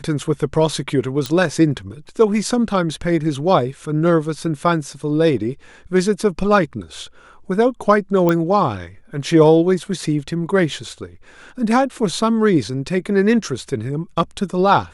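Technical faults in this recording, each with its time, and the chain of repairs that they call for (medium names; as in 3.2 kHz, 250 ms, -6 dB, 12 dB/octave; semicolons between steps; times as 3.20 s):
1.26 s: pop
8.29 s: pop -6 dBFS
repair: de-click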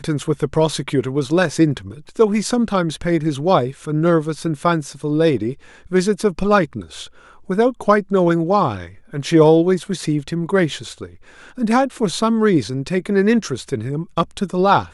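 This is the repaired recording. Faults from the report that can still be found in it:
nothing left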